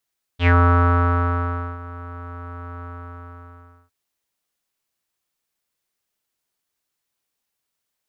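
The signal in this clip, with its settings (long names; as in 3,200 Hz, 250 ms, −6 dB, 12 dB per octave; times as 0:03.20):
subtractive voice square F2 12 dB per octave, low-pass 1,300 Hz, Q 6.7, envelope 1.5 octaves, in 0.15 s, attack 77 ms, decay 1.31 s, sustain −21 dB, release 1.07 s, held 2.44 s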